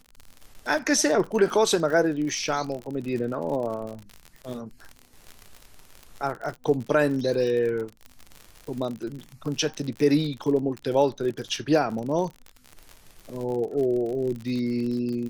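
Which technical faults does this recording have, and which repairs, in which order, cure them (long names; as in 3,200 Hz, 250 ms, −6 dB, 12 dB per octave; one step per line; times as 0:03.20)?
surface crackle 53 per second −31 dBFS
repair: click removal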